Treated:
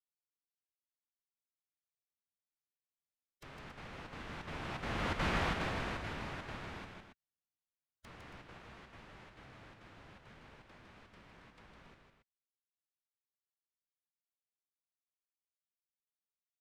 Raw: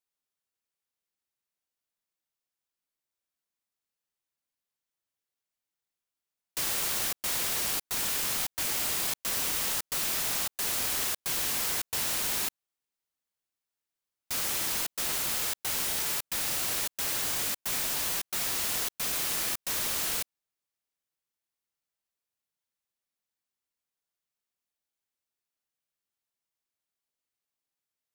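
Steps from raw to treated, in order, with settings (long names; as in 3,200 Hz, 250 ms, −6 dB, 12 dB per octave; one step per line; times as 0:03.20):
source passing by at 0:08.91, 40 m/s, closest 18 metres
treble cut that deepens with the level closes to 2,000 Hz, closed at −56 dBFS
bass and treble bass +8 dB, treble −4 dB
phase-vocoder stretch with locked phases 0.59×
on a send: loudspeakers that aren't time-aligned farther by 54 metres −5 dB, 95 metres −10 dB
on the sum: level +6.5 dB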